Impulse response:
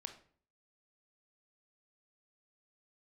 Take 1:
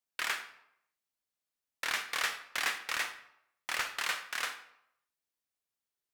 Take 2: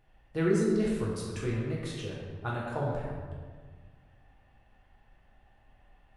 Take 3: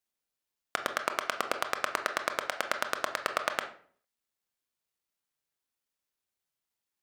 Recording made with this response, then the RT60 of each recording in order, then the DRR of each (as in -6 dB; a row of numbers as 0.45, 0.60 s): 3; 0.75, 1.6, 0.50 s; 8.5, -5.0, 6.5 dB